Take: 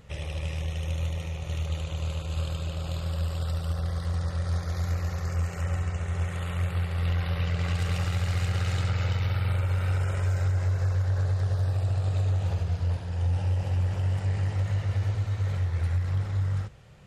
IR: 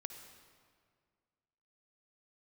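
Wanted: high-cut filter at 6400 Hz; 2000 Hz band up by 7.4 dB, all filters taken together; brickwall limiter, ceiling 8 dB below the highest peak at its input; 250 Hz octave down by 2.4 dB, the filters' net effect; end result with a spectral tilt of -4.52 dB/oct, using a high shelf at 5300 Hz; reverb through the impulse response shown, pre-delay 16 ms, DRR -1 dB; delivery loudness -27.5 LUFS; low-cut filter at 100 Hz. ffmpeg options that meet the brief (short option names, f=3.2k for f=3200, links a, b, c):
-filter_complex "[0:a]highpass=100,lowpass=6.4k,equalizer=f=250:t=o:g=-4,equalizer=f=2k:t=o:g=8,highshelf=f=5.3k:g=8,alimiter=level_in=1dB:limit=-24dB:level=0:latency=1,volume=-1dB,asplit=2[a][b];[1:a]atrim=start_sample=2205,adelay=16[c];[b][c]afir=irnorm=-1:irlink=0,volume=4dB[d];[a][d]amix=inputs=2:normalize=0,volume=5.5dB"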